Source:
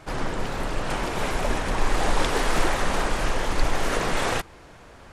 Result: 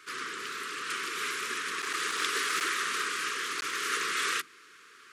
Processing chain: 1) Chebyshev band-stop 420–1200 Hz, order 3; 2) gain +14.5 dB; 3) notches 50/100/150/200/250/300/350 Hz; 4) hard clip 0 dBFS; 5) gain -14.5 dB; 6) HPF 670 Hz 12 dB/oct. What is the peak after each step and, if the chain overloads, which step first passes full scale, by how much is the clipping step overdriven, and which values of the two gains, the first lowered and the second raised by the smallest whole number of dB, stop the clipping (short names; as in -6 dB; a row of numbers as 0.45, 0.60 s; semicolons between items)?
-9.0, +5.5, +5.5, 0.0, -14.5, -15.5 dBFS; step 2, 5.5 dB; step 2 +8.5 dB, step 5 -8.5 dB